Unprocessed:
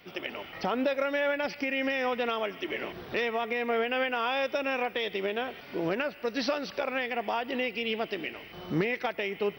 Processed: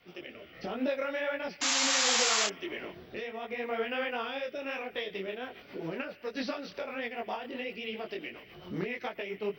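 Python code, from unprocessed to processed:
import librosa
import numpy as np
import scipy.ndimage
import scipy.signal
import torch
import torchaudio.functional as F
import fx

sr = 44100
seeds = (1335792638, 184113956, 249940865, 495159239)

y = fx.rotary_switch(x, sr, hz=0.7, then_hz=7.5, switch_at_s=4.37)
y = fx.spec_paint(y, sr, seeds[0], shape='noise', start_s=1.61, length_s=0.86, low_hz=690.0, high_hz=7600.0, level_db=-24.0)
y = fx.detune_double(y, sr, cents=49)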